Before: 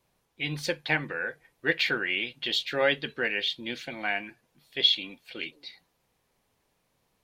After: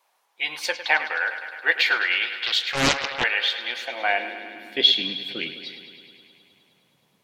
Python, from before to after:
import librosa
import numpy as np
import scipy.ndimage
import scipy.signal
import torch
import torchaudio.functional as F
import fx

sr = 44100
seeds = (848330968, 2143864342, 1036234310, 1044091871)

y = fx.echo_bbd(x, sr, ms=104, stages=4096, feedback_pct=76, wet_db=-12.0)
y = fx.filter_sweep_highpass(y, sr, from_hz=840.0, to_hz=150.0, start_s=3.78, end_s=5.18, q=1.8)
y = fx.doppler_dist(y, sr, depth_ms=0.85, at=(2.4, 3.24))
y = F.gain(torch.from_numpy(y), 5.0).numpy()